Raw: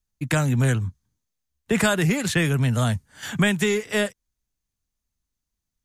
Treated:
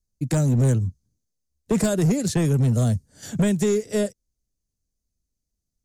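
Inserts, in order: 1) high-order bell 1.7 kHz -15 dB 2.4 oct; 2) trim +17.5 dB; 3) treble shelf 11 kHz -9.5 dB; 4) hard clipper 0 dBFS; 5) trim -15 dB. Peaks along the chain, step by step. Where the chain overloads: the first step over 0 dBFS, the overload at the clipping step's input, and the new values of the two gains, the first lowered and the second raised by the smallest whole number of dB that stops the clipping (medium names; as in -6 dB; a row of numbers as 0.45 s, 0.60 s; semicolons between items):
-9.0 dBFS, +8.5 dBFS, +7.0 dBFS, 0.0 dBFS, -15.0 dBFS; step 2, 7.0 dB; step 2 +10.5 dB, step 5 -8 dB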